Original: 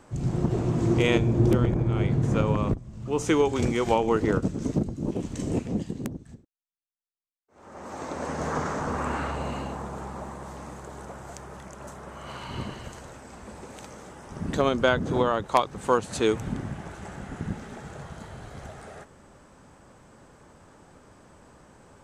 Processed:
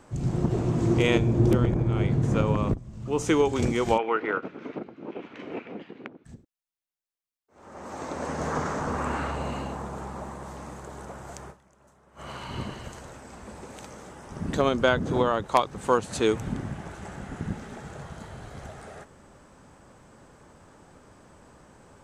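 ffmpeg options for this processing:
-filter_complex "[0:a]asplit=3[s0][s1][s2];[s0]afade=t=out:st=3.97:d=0.02[s3];[s1]highpass=460,equalizer=f=590:t=q:w=4:g=-3,equalizer=f=1400:t=q:w=4:g=7,equalizer=f=2300:t=q:w=4:g=7,lowpass=f=3200:w=0.5412,lowpass=f=3200:w=1.3066,afade=t=in:st=3.97:d=0.02,afade=t=out:st=6.24:d=0.02[s4];[s2]afade=t=in:st=6.24:d=0.02[s5];[s3][s4][s5]amix=inputs=3:normalize=0,asplit=3[s6][s7][s8];[s6]atrim=end=11.74,asetpts=PTS-STARTPTS,afade=t=out:st=11.5:d=0.24:c=exp:silence=0.125893[s9];[s7]atrim=start=11.74:end=11.96,asetpts=PTS-STARTPTS,volume=0.126[s10];[s8]atrim=start=11.96,asetpts=PTS-STARTPTS,afade=t=in:d=0.24:c=exp:silence=0.125893[s11];[s9][s10][s11]concat=n=3:v=0:a=1"

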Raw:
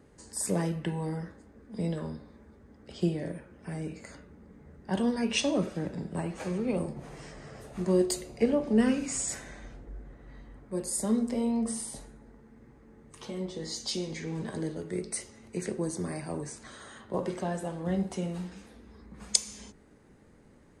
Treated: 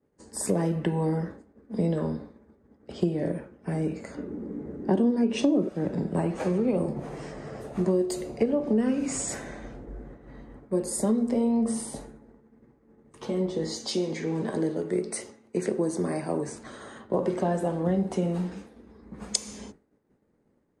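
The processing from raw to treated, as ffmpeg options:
-filter_complex "[0:a]asettb=1/sr,asplit=3[s0][s1][s2];[s0]atrim=end=4.174[s3];[s1]atrim=start=4.17:end=5.69,asetpts=PTS-STARTPTS,afade=t=in:d=0.004:c=qsin,afade=t=out:st=1.516:d=0.004:c=qsin,equalizer=f=310:w=1:g=13[s4];[s2]atrim=start=5.686[s5];[s3][s4]acrossfade=d=0.004:c1=hsin:c2=qsin[s6];[s6][s5]acrossfade=d=0.004:c1=qsin:c2=hsin,asettb=1/sr,asplit=3[s7][s8][s9];[s7]atrim=end=13.774[s10];[s8]atrim=start=13.77:end=16.48,asetpts=PTS-STARTPTS,afade=t=in:d=0.004:c=qsin,afade=t=out:st=2.706:d=0.004:c=qsin,highpass=f=200:p=1[s11];[s9]atrim=start=16.476[s12];[s10][s11]acrossfade=d=0.004:c1=hsin:c2=qsin[s13];[s13][s12]acrossfade=d=0.004:c1=qsin:c2=hsin,agate=range=0.0224:threshold=0.00562:ratio=3:detection=peak,equalizer=f=390:w=0.31:g=10,acompressor=threshold=0.0891:ratio=6"

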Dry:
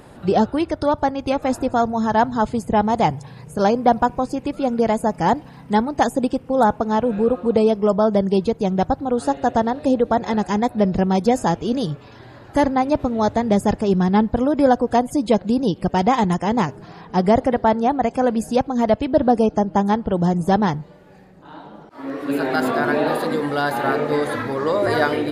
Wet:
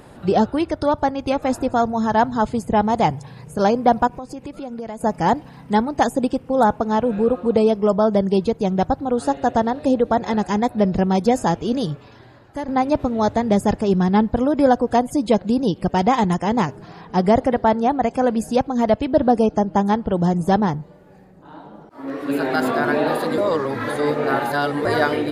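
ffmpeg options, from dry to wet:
-filter_complex "[0:a]asettb=1/sr,asplit=3[s0][s1][s2];[s0]atrim=end=4.074[s3];[s1]atrim=start=4.07:end=5.01,asetpts=PTS-STARTPTS,afade=t=in:d=0.004:c=qsin,afade=t=out:st=0.936:d=0.004:c=qsin,acompressor=threshold=0.0282:ratio=3:attack=3.2:release=140:knee=1:detection=peak[s4];[s2]atrim=start=5.006[s5];[s3][s4]acrossfade=d=0.004:c1=hsin:c2=qsin[s6];[s6][s5]acrossfade=d=0.004:c1=qsin:c2=hsin,asettb=1/sr,asplit=3[s7][s8][s9];[s7]atrim=end=20.604[s10];[s8]atrim=start=20.6:end=22.08,asetpts=PTS-STARTPTS,afade=t=in:d=0.004:c=qsin,afade=t=out:st=1.476:d=0.004:c=qsin,equalizer=f=3300:t=o:w=2.4:g=-6[s11];[s9]atrim=start=22.076[s12];[s10][s11]acrossfade=d=0.004:c1=hsin:c2=qsin[s13];[s13][s12]acrossfade=d=0.004:c1=qsin:c2=hsin,asplit=4[s14][s15][s16][s17];[s14]atrim=end=12.68,asetpts=PTS-STARTPTS,afade=t=out:st=11.88:d=0.8:silence=0.199526[s18];[s15]atrim=start=12.68:end=23.382,asetpts=PTS-STARTPTS,afade=t=in:d=0.004:c=hsin:silence=0.199526[s19];[s16]atrim=start=23.378:end=24.852,asetpts=PTS-STARTPTS,areverse[s20];[s17]atrim=start=24.848[s21];[s18][s19]concat=n=2:v=0:a=1[s22];[s22][s20]acrossfade=d=0.004:c1=hsin:c2=hsin[s23];[s23][s21]acrossfade=d=0.004:c1=hsin:c2=hsin"

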